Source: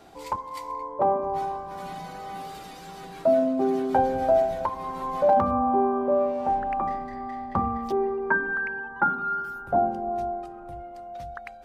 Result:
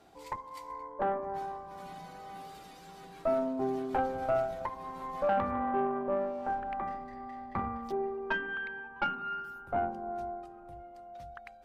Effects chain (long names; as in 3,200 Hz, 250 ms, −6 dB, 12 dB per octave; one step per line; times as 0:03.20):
tube saturation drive 15 dB, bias 0.7
level −5 dB